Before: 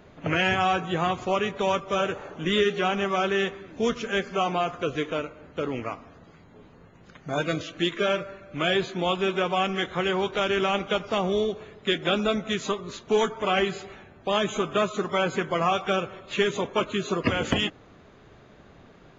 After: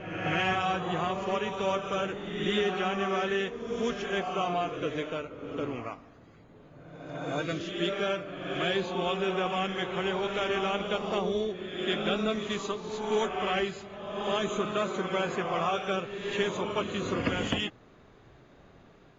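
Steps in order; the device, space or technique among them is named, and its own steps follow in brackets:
reverse reverb (reversed playback; convolution reverb RT60 1.4 s, pre-delay 52 ms, DRR 4 dB; reversed playback)
level −6 dB

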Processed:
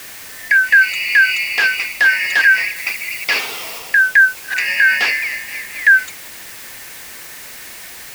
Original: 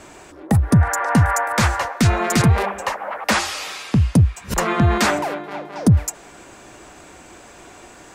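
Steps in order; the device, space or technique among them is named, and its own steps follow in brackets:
split-band scrambled radio (band-splitting scrambler in four parts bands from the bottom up 3142; band-pass filter 370–3,300 Hz; white noise bed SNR 18 dB)
0:02.76–0:03.79: high-shelf EQ 8,500 Hz +5 dB
level +3 dB

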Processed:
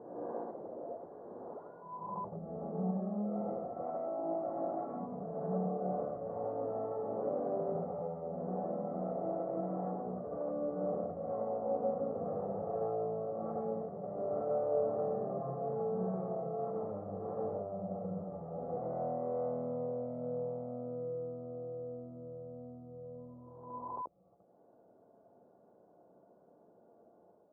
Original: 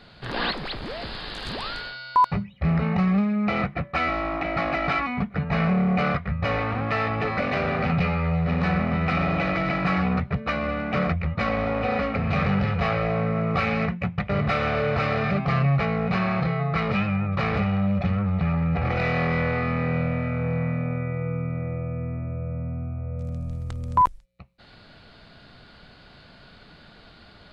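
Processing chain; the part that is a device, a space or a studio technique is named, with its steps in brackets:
ghost voice (reversed playback; convolution reverb RT60 1.2 s, pre-delay 57 ms, DRR −4 dB; reversed playback; high-pass filter 740 Hz 12 dB per octave)
inverse Chebyshev low-pass filter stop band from 2,400 Hz, stop band 70 dB

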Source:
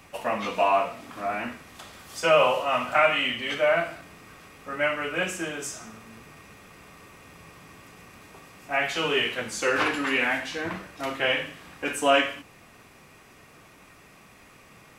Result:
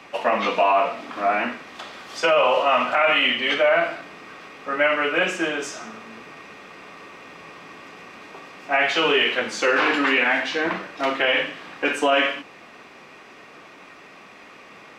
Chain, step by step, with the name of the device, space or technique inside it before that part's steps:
DJ mixer with the lows and highs turned down (three-way crossover with the lows and the highs turned down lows −19 dB, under 210 Hz, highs −20 dB, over 5,500 Hz; brickwall limiter −18 dBFS, peak gain reduction 10 dB)
level +8.5 dB

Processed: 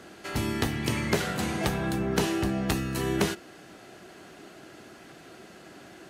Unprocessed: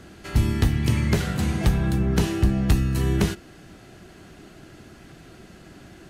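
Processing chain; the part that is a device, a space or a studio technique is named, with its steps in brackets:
filter by subtraction (in parallel: low-pass filter 560 Hz 12 dB per octave + polarity inversion)

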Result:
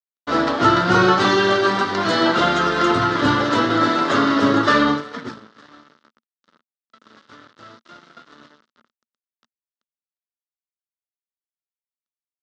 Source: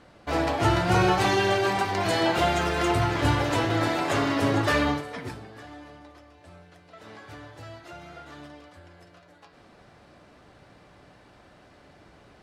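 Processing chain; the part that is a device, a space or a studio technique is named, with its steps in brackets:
blown loudspeaker (dead-zone distortion −42 dBFS; loudspeaker in its box 180–5,900 Hz, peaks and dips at 230 Hz +9 dB, 760 Hz −9 dB, 1,300 Hz +9 dB, 2,400 Hz −9 dB, 3,700 Hz +3 dB)
level +7.5 dB

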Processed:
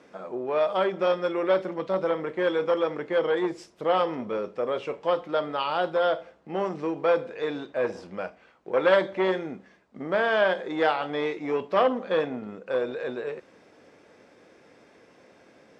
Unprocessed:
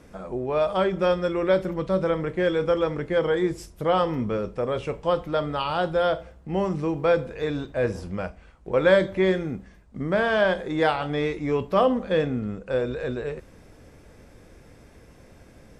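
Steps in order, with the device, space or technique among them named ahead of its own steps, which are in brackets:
public-address speaker with an overloaded transformer (saturating transformer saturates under 960 Hz; band-pass filter 300–5,300 Hz)

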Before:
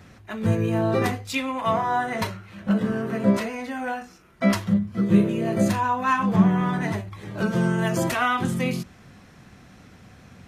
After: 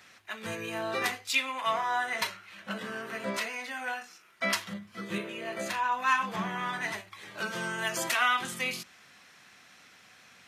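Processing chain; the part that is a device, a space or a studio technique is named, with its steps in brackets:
0:05.18–0:05.92: bass and treble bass −5 dB, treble −7 dB
filter by subtraction (in parallel: low-pass filter 2,600 Hz 12 dB per octave + polarity inversion)

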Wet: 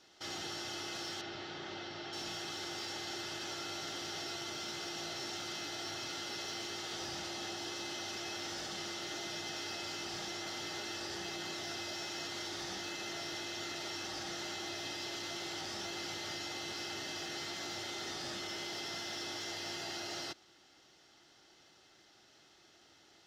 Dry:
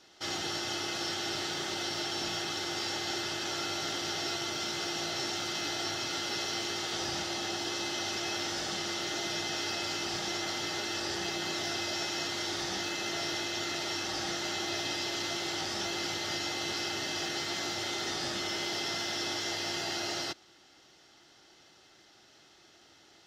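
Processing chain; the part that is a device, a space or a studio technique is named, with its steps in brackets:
soft clipper into limiter (soft clipping −25.5 dBFS, distortion −23 dB; brickwall limiter −30 dBFS, peak gain reduction 3.5 dB)
0:01.21–0:02.13: high-frequency loss of the air 180 metres
level −4 dB

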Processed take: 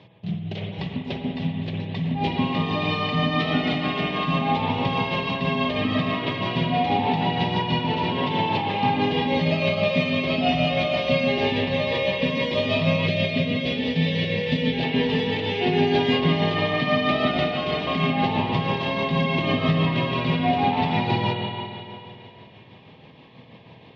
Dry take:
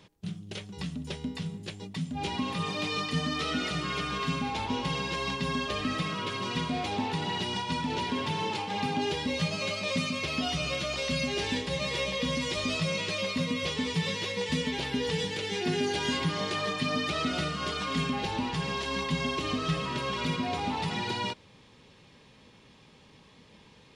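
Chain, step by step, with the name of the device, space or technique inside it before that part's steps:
combo amplifier with spring reverb and tremolo (spring reverb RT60 2.7 s, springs 49/55 ms, chirp 75 ms, DRR −0.5 dB; amplitude tremolo 6.2 Hz, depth 37%; loudspeaker in its box 91–3,700 Hz, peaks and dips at 120 Hz +8 dB, 680 Hz +8 dB, 1,400 Hz −10 dB)
0:13.07–0:14.84: parametric band 1,000 Hz −15 dB 0.4 octaves
level +6.5 dB

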